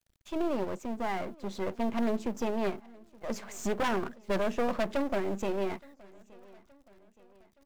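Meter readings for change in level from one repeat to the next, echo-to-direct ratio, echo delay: −6.0 dB, −23.0 dB, 871 ms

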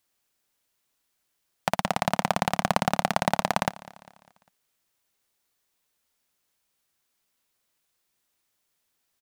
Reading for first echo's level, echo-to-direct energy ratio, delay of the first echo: −21.5 dB, −20.0 dB, 200 ms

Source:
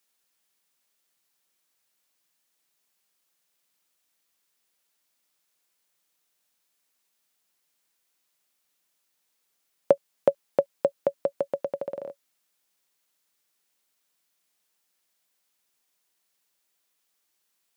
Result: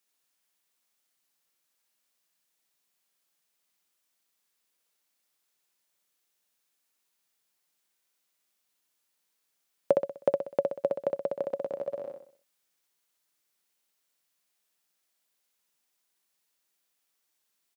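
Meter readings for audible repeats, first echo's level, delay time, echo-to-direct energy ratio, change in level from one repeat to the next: 5, −3.5 dB, 63 ms, −2.5 dB, −7.5 dB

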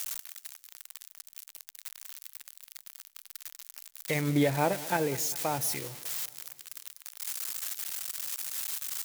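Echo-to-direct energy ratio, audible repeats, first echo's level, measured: −18.0 dB, 4, −19.5 dB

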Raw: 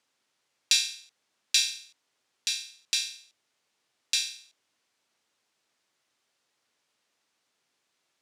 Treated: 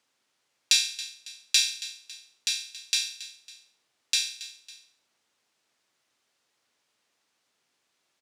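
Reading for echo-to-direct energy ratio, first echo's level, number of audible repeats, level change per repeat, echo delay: −15.0 dB, −16.0 dB, 2, −6.5 dB, 276 ms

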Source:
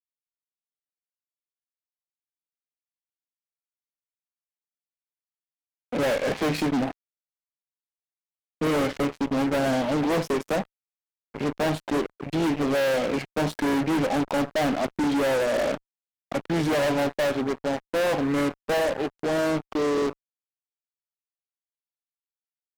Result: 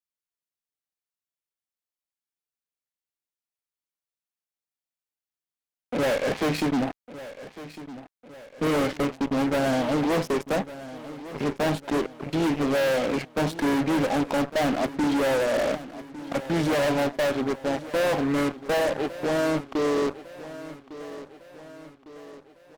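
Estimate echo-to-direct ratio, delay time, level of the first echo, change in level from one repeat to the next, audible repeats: −14.0 dB, 1,154 ms, −15.5 dB, −6.0 dB, 4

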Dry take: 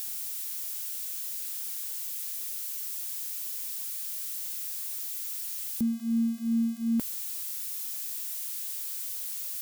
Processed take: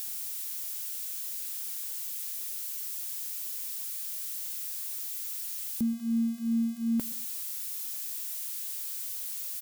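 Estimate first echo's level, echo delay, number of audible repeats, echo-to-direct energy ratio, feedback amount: −20.0 dB, 125 ms, 2, −19.5 dB, 29%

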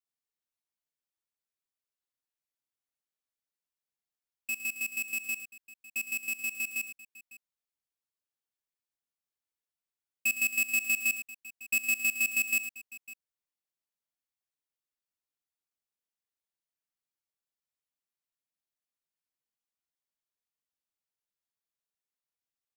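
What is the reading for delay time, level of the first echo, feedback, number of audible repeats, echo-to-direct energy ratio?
60 ms, −17.5 dB, repeats not evenly spaced, 3, −9.5 dB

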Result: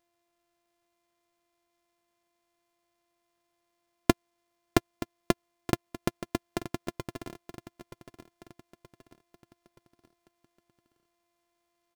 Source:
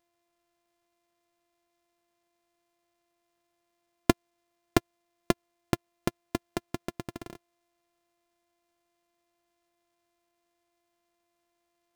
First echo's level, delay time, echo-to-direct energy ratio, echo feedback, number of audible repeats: −14.0 dB, 925 ms, −13.0 dB, 46%, 4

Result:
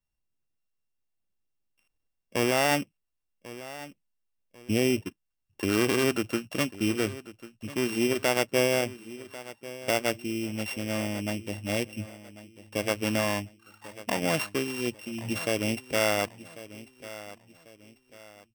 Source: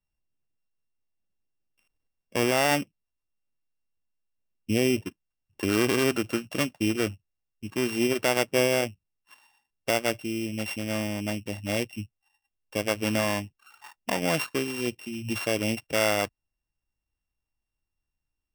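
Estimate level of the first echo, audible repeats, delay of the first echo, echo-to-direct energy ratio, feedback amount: −16.5 dB, 3, 1,094 ms, −16.0 dB, 36%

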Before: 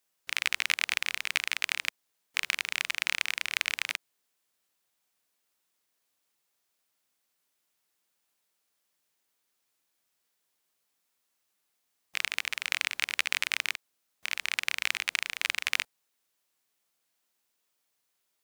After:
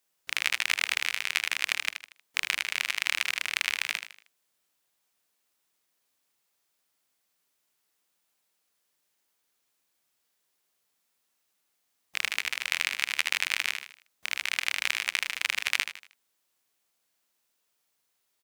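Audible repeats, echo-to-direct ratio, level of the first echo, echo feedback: 4, −8.0 dB, −8.5 dB, 39%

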